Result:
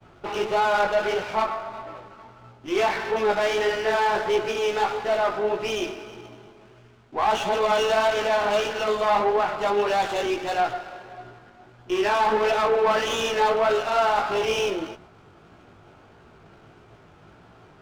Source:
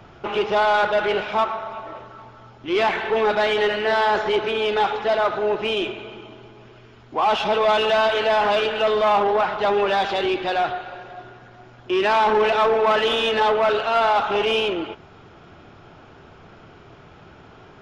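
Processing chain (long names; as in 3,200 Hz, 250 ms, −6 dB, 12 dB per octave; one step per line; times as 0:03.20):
downward expander −43 dBFS
chorus effect 1.6 Hz, delay 16.5 ms, depth 4.3 ms
windowed peak hold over 5 samples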